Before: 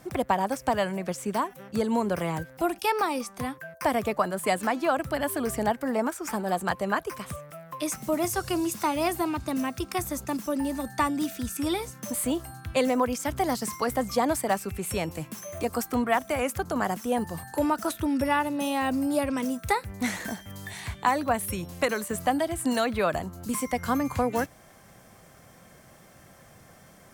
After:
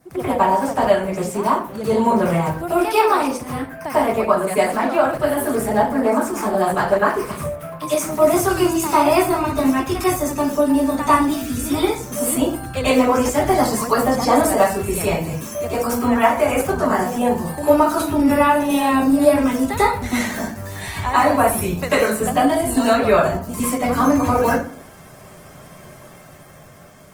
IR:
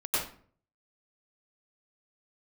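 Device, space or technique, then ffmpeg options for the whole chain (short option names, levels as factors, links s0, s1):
speakerphone in a meeting room: -filter_complex "[0:a]adynamicequalizer=threshold=0.00178:dfrequency=3100:dqfactor=5:tfrequency=3100:tqfactor=5:attack=5:release=100:ratio=0.375:range=2:mode=cutabove:tftype=bell[s0];[1:a]atrim=start_sample=2205[s1];[s0][s1]afir=irnorm=-1:irlink=0,dynaudnorm=f=200:g=11:m=1.58" -ar 48000 -c:a libopus -b:a 20k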